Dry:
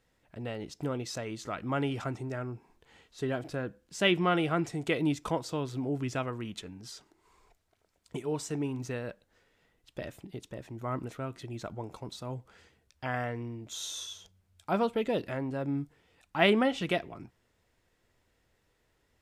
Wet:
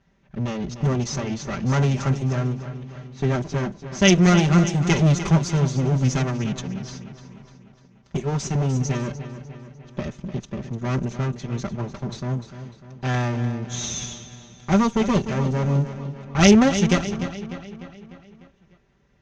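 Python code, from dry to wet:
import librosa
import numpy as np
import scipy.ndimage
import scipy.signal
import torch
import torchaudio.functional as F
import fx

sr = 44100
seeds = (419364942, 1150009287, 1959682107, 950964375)

p1 = fx.lower_of_two(x, sr, delay_ms=5.1)
p2 = fx.lowpass_res(p1, sr, hz=6300.0, q=8.3)
p3 = fx.bass_treble(p2, sr, bass_db=13, treble_db=-5)
p4 = p3 + fx.echo_feedback(p3, sr, ms=299, feedback_pct=55, wet_db=-11.5, dry=0)
p5 = fx.env_lowpass(p4, sr, base_hz=2900.0, full_db=-20.0)
p6 = fx.highpass(p5, sr, hz=85.0, slope=6)
y = p6 * librosa.db_to_amplitude(7.0)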